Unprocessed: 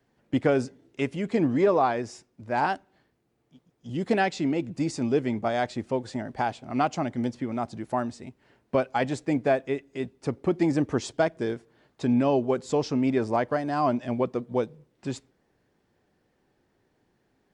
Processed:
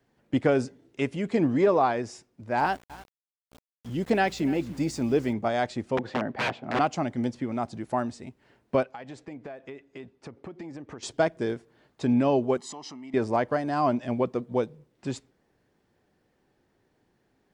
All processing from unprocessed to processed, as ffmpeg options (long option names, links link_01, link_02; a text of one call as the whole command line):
ffmpeg -i in.wav -filter_complex "[0:a]asettb=1/sr,asplit=3[link_01][link_02][link_03];[link_01]atrim=end=2.604[link_04];[link_02]atrim=start=2.6:end=5.33,asetpts=PTS-STARTPTS,afade=type=in:duration=0.004:curve=qsin,afade=type=out:start_time=2.726:duration=0.004:curve=qsin,aecho=1:1:296:0.106,atrim=end_sample=120393,aeval=exprs='val(0)+0.00316*(sin(2*PI*60*n/s)+sin(2*PI*2*60*n/s)/2+sin(2*PI*3*60*n/s)/3+sin(2*PI*4*60*n/s)/4+sin(2*PI*5*60*n/s)/5)':channel_layout=same,aeval=exprs='val(0)*gte(abs(val(0)),0.00562)':channel_layout=same[link_05];[link_03]atrim=start=5.326[link_06];[link_04][link_05]acrossfade=duration=0.004:curve1=hsin:curve2=qsin[link_07];[link_07][link_06]acrossfade=duration=0.004:curve1=qsin:curve2=hsin,asettb=1/sr,asplit=3[link_08][link_09][link_10];[link_08]atrim=end=5.974[link_11];[link_09]atrim=start=5.97:end=6.79,asetpts=PTS-STARTPTS,afade=type=in:duration=0.004:curve=qsin,afade=type=out:start_time=0.816:duration=0.004:curve=qsin,acontrast=37,aeval=exprs='(mod(8.91*val(0)+1,2)-1)/8.91':channel_layout=same,highpass=140,lowpass=2500[link_12];[link_10]atrim=start=6.786[link_13];[link_11][link_12]acrossfade=duration=0.004:curve1=hsin:curve2=qsin[link_14];[link_14][link_13]acrossfade=duration=0.004:curve1=qsin:curve2=hsin,asettb=1/sr,asplit=3[link_15][link_16][link_17];[link_15]atrim=end=8.834[link_18];[link_16]atrim=start=8.83:end=11.03,asetpts=PTS-STARTPTS,afade=type=in:duration=0.004:curve=qsin,afade=type=out:start_time=2.196:duration=0.004:curve=qsin,highpass=frequency=640:poles=1,aemphasis=mode=reproduction:type=bsi,acompressor=threshold=-36dB:ratio=12:attack=3.2:release=140:knee=1:detection=peak[link_19];[link_17]atrim=start=11.026[link_20];[link_18][link_19]acrossfade=duration=0.004:curve1=hsin:curve2=qsin[link_21];[link_21][link_20]acrossfade=duration=0.004:curve1=qsin:curve2=hsin,asettb=1/sr,asplit=3[link_22][link_23][link_24];[link_22]atrim=end=12.574[link_25];[link_23]atrim=start=12.57:end=13.14,asetpts=PTS-STARTPTS,afade=type=in:duration=0.004:curve=qsin,afade=type=out:start_time=0.566:duration=0.004:curve=qsin,aecho=1:1:1:0.93,atrim=end_sample=25137,acompressor=threshold=-35dB:ratio=6:attack=3.2:release=140:knee=1:detection=peak,highpass=320[link_26];[link_24]atrim=start=13.136[link_27];[link_25][link_26]acrossfade=duration=0.004:curve1=hsin:curve2=qsin[link_28];[link_28][link_27]acrossfade=duration=0.004:curve1=qsin:curve2=hsin" out.wav